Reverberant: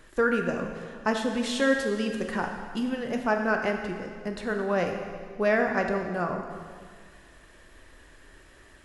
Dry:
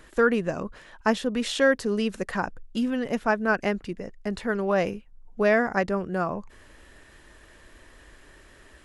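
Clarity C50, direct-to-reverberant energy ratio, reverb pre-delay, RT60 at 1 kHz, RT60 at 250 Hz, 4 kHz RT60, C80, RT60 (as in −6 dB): 5.0 dB, 3.0 dB, 4 ms, 1.9 s, 1.9 s, 1.8 s, 6.0 dB, 1.9 s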